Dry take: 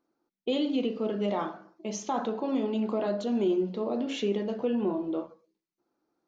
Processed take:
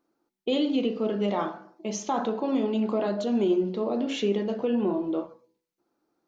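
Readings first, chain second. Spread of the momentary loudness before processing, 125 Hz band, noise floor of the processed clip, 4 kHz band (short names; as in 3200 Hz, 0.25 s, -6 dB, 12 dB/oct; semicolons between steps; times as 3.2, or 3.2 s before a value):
8 LU, n/a, -83 dBFS, +3.0 dB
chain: de-hum 123.2 Hz, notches 8; gain +3 dB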